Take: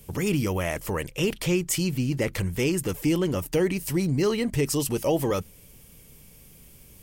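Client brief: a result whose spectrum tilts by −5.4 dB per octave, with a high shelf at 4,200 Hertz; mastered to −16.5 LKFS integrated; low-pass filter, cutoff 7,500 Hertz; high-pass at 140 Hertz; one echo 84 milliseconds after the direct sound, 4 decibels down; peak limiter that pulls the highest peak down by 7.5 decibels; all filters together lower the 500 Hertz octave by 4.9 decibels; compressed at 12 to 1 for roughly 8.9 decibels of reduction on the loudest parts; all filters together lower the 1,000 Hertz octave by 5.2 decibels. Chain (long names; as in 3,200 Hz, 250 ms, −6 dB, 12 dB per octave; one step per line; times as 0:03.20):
high-pass filter 140 Hz
low-pass filter 7,500 Hz
parametric band 500 Hz −5.5 dB
parametric band 1,000 Hz −4.5 dB
high-shelf EQ 4,200 Hz −8 dB
downward compressor 12 to 1, threshold −31 dBFS
brickwall limiter −29 dBFS
single-tap delay 84 ms −4 dB
level +20.5 dB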